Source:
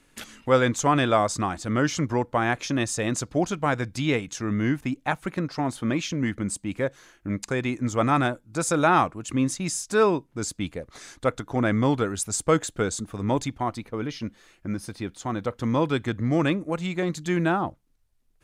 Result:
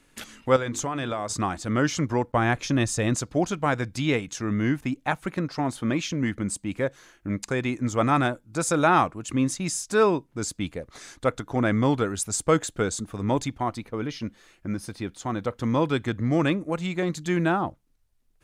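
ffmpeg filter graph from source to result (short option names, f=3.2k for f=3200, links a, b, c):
-filter_complex "[0:a]asettb=1/sr,asplit=3[a][b][c];[a]atrim=end=0.564[d];[b]atrim=start=0.56:end=1.33,asetpts=PTS-STARTPTS,afade=t=in:d=0.004:c=qsin,afade=t=out:st=0.766:d=0.004:c=qsin,bandreject=f=50:t=h:w=6,bandreject=f=100:t=h:w=6,bandreject=f=150:t=h:w=6,bandreject=f=200:t=h:w=6,bandreject=f=250:t=h:w=6,bandreject=f=300:t=h:w=6,bandreject=f=350:t=h:w=6,bandreject=f=400:t=h:w=6,bandreject=f=450:t=h:w=6,acompressor=threshold=-24dB:ratio=12:attack=3.2:release=140:knee=1:detection=peak[e];[c]atrim=start=1.326[f];[d][e]acrossfade=d=0.004:c1=hsin:c2=qsin[g];[g][f]acrossfade=d=0.004:c1=qsin:c2=hsin,asettb=1/sr,asplit=3[h][i][j];[h]atrim=end=2.324[k];[i]atrim=start=2.32:end=3.15,asetpts=PTS-STARTPTS,afade=t=in:d=0.004:c=qsin,afade=t=out:st=0.826:d=0.004:c=qsin,agate=range=-33dB:threshold=-40dB:ratio=3:release=100:detection=peak,lowshelf=f=120:g=10.5[l];[j]atrim=start=3.146[m];[k][l]acrossfade=d=0.004:c1=hsin:c2=qsin[n];[n][m]acrossfade=d=0.004:c1=qsin:c2=hsin"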